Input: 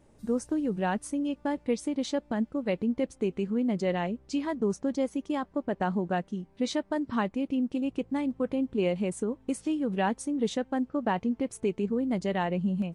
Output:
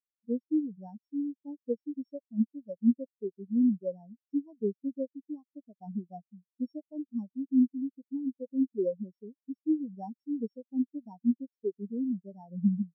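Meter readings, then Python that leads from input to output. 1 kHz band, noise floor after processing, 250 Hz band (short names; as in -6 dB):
-18.0 dB, under -85 dBFS, -1.5 dB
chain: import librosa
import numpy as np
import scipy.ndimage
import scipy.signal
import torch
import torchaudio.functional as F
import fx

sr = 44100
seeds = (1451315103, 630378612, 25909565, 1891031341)

y = np.r_[np.sort(x[:len(x) // 8 * 8].reshape(-1, 8), axis=1).ravel(), x[len(x) // 8 * 8:]]
y = fx.spectral_expand(y, sr, expansion=4.0)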